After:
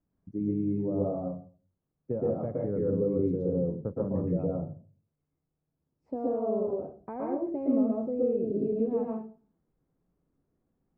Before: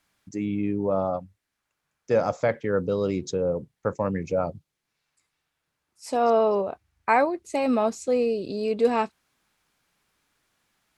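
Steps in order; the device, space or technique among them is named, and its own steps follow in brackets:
television next door (downward compressor 3 to 1, threshold −25 dBFS, peak gain reduction 8 dB; low-pass filter 350 Hz 12 dB per octave; convolution reverb RT60 0.40 s, pre-delay 113 ms, DRR −3.5 dB)

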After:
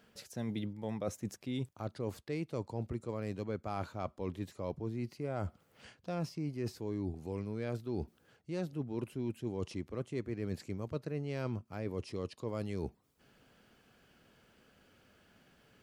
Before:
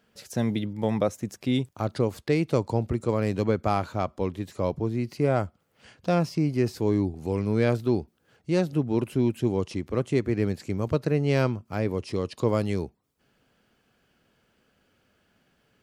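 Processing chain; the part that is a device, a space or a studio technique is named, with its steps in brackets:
compression on the reversed sound (reversed playback; downward compressor 5 to 1, threshold −38 dBFS, peak gain reduction 18.5 dB; reversed playback)
level +2 dB

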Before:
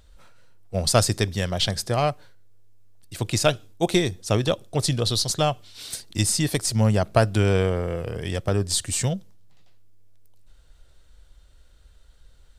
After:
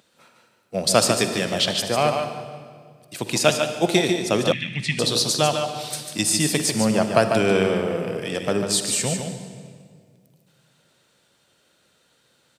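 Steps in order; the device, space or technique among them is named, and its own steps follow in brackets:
PA in a hall (high-pass filter 160 Hz 24 dB per octave; parametric band 2,500 Hz +4.5 dB 0.22 octaves; single-tap delay 146 ms −6.5 dB; convolution reverb RT60 2.0 s, pre-delay 45 ms, DRR 8.5 dB)
0:04.52–0:04.99: drawn EQ curve 190 Hz 0 dB, 490 Hz −26 dB, 1,300 Hz −17 dB, 2,000 Hz +14 dB, 4,800 Hz −10 dB, 9,400 Hz −14 dB, 14,000 Hz −29 dB
level +2 dB

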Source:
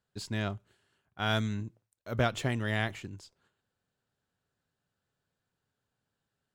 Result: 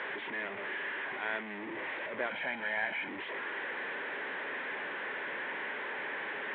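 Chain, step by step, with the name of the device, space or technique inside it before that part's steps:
digital answering machine (band-pass filter 400–3,300 Hz; linear delta modulator 16 kbit/s, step −29.5 dBFS; loudspeaker in its box 360–3,600 Hz, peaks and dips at 490 Hz −3 dB, 710 Hz −9 dB, 1,300 Hz −9 dB, 1,900 Hz +6 dB, 2,800 Hz −7 dB)
0:02.30–0:03.09: comb filter 1.3 ms, depth 67%

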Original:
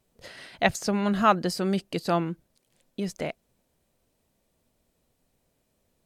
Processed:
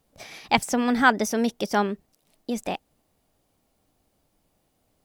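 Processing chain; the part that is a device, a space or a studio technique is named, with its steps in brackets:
nightcore (speed change +20%)
level +2.5 dB

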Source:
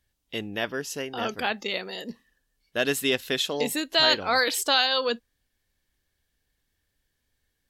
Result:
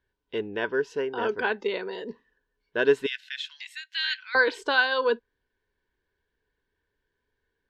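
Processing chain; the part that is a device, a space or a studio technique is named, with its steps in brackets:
0:03.06–0:04.35: Butterworth high-pass 1,800 Hz 36 dB per octave
inside a cardboard box (low-pass filter 3,600 Hz 12 dB per octave; hollow resonant body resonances 420/970/1,500 Hz, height 15 dB, ringing for 30 ms)
level −5.5 dB

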